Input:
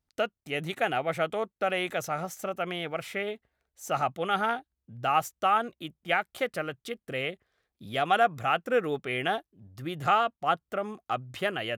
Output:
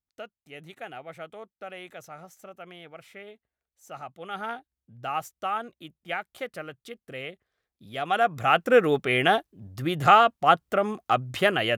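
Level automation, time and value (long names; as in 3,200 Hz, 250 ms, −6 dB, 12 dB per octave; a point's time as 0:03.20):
0:04.10 −12 dB
0:04.51 −5 dB
0:07.91 −5 dB
0:08.63 +7.5 dB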